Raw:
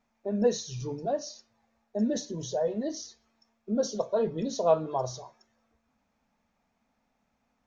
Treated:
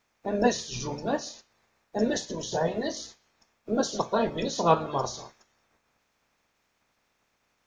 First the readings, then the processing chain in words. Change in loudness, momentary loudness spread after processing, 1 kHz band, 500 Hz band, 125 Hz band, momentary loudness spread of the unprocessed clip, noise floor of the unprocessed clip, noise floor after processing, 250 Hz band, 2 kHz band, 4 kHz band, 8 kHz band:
+1.5 dB, 12 LU, +6.5 dB, 0.0 dB, +2.0 dB, 12 LU, −76 dBFS, −74 dBFS, +1.0 dB, +13.0 dB, +6.0 dB, can't be measured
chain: ceiling on every frequency bin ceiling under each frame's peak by 19 dB
level +2 dB

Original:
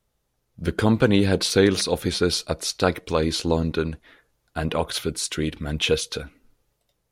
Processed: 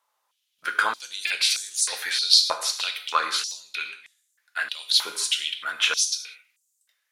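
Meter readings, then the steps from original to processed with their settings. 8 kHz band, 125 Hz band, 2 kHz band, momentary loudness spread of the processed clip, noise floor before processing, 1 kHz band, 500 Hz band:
+5.0 dB, below −40 dB, +3.5 dB, 15 LU, −74 dBFS, +1.5 dB, −18.5 dB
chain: reverb whose tail is shaped and stops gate 220 ms falling, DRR 5 dB
buffer that repeats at 0:01.27/0:02.45/0:03.48, samples 128, times 10
high-pass on a step sequencer 3.2 Hz 970–7,400 Hz

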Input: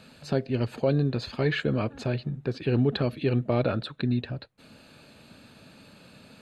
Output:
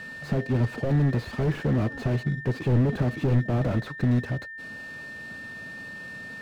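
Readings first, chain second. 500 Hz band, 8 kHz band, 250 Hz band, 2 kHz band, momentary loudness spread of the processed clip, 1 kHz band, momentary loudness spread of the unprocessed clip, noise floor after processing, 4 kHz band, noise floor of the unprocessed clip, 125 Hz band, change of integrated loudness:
−2.5 dB, can't be measured, +1.5 dB, +4.0 dB, 14 LU, +0.5 dB, 6 LU, −40 dBFS, −6.5 dB, −54 dBFS, +4.5 dB, +2.0 dB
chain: steady tone 1,800 Hz −42 dBFS
slew-rate limiting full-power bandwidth 14 Hz
level +5 dB

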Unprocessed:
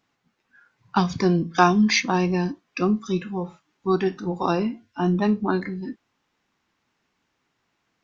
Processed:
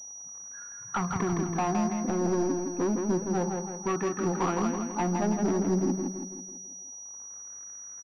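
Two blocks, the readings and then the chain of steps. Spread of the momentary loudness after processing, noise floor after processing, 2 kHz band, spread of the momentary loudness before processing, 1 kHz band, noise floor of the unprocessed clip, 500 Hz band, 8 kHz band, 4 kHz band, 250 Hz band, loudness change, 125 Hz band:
13 LU, −44 dBFS, −11.5 dB, 13 LU, −6.5 dB, −74 dBFS, −4.0 dB, can't be measured, −17.5 dB, −5.0 dB, −6.0 dB, −6.0 dB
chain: notch filter 1,500 Hz, Q 15
downward compressor 12 to 1, threshold −25 dBFS, peak gain reduction 15 dB
surface crackle 99 per second −43 dBFS
auto-filter low-pass sine 0.29 Hz 420–1,500 Hz
gain into a clipping stage and back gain 26.5 dB
on a send: repeating echo 164 ms, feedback 50%, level −4.5 dB
on the sum: switching amplifier with a slow clock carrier 5,800 Hz
level +1.5 dB

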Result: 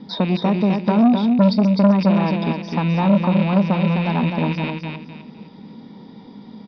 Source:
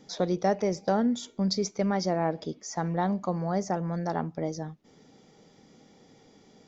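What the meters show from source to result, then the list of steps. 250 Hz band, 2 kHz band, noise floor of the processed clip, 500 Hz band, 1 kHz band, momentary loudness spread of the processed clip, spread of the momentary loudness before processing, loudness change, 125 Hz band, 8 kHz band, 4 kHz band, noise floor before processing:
+14.0 dB, +11.5 dB, −42 dBFS, +6.5 dB, +7.0 dB, 8 LU, 8 LU, +11.5 dB, +13.5 dB, can't be measured, +7.5 dB, −59 dBFS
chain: loose part that buzzes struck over −38 dBFS, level −23 dBFS
downward compressor 2 to 1, threshold −32 dBFS, peak gain reduction 7 dB
Butterworth low-pass 5,000 Hz 72 dB per octave
hollow resonant body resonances 210/950/3,700 Hz, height 16 dB, ringing for 40 ms
on a send: repeating echo 256 ms, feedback 29%, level −5 dB
on the sum: saturating transformer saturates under 510 Hz
level +6.5 dB

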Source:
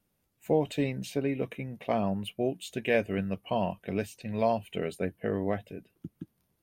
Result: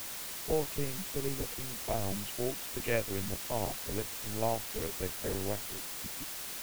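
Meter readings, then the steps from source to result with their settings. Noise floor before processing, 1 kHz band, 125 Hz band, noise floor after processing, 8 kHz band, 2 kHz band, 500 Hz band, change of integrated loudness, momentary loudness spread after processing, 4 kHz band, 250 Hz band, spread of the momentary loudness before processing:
−76 dBFS, −5.0 dB, −4.0 dB, −41 dBFS, +13.0 dB, −3.5 dB, −5.5 dB, −3.5 dB, 5 LU, +3.5 dB, −8.5 dB, 18 LU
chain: adaptive Wiener filter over 15 samples
linear-prediction vocoder at 8 kHz pitch kept
bit-depth reduction 6 bits, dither triangular
level −5 dB

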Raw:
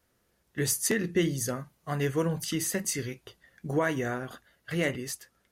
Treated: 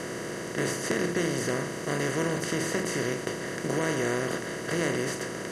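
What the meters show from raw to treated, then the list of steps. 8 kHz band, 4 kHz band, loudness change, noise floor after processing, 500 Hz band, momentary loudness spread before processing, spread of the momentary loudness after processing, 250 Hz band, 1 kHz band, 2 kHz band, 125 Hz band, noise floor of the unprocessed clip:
−2.0 dB, +2.0 dB, +1.0 dB, −36 dBFS, +3.0 dB, 14 LU, 5 LU, +1.5 dB, +4.0 dB, +4.0 dB, −0.5 dB, −72 dBFS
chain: compressor on every frequency bin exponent 0.2
high-frequency loss of the air 57 metres
level −7 dB

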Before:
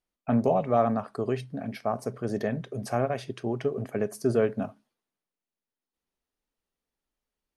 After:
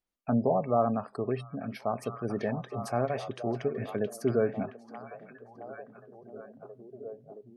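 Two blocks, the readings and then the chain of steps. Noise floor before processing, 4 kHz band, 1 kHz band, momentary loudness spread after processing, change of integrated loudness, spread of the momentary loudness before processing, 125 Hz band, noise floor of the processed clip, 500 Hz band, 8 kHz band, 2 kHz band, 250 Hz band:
below −85 dBFS, −3.0 dB, −2.0 dB, 21 LU, −2.5 dB, 9 LU, −2.5 dB, −58 dBFS, −2.5 dB, −3.0 dB, −2.5 dB, −2.5 dB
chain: gate on every frequency bin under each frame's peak −30 dB strong
echo through a band-pass that steps 670 ms, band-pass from 2,700 Hz, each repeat −0.7 octaves, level −4 dB
level −2.5 dB

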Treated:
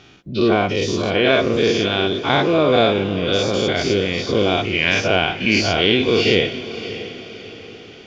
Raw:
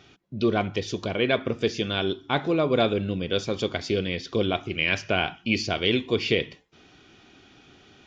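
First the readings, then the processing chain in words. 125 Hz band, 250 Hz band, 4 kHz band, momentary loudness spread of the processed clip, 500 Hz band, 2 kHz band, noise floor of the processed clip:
+6.5 dB, +7.5 dB, +9.0 dB, 13 LU, +8.5 dB, +8.5 dB, −40 dBFS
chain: every bin's largest magnitude spread in time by 120 ms
feedback delay with all-pass diffusion 607 ms, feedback 44%, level −13 dB
level +2.5 dB

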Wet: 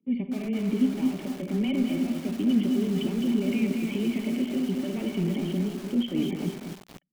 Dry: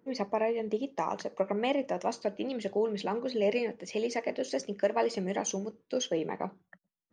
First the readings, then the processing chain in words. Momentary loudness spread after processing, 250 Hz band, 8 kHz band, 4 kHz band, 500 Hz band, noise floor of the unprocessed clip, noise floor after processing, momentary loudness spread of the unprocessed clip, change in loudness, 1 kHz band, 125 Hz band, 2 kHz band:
5 LU, +12.5 dB, −6.0 dB, +2.5 dB, −4.5 dB, −81 dBFS, −47 dBFS, 5 LU, +5.0 dB, −11.0 dB, +12.5 dB, −0.5 dB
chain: low-shelf EQ 100 Hz −8.5 dB
comb filter 5 ms, depth 43%
dynamic equaliser 480 Hz, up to −7 dB, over −45 dBFS, Q 6.1
automatic gain control gain up to 6.5 dB
leveller curve on the samples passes 2
brickwall limiter −16.5 dBFS, peak gain reduction 8.5 dB
formant resonators in series i
frequency shifter −14 Hz
multi-tap delay 46/58/84/210/218/284 ms −19/−15.5/−16.5/−6.5/−15/−18.5 dB
feedback echo at a low word length 241 ms, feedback 55%, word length 7 bits, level −8 dB
level +5.5 dB

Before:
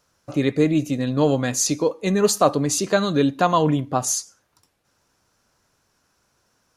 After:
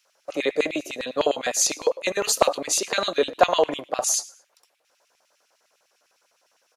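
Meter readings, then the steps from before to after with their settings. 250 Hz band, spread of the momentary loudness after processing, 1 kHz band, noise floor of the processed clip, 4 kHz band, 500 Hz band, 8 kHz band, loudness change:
−13.0 dB, 7 LU, −2.0 dB, −69 dBFS, +2.5 dB, −2.0 dB, +0.5 dB, −2.5 dB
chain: echo with shifted repeats 112 ms, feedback 33%, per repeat +53 Hz, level −23 dB
auto-filter high-pass square 9.9 Hz 570–2,500 Hz

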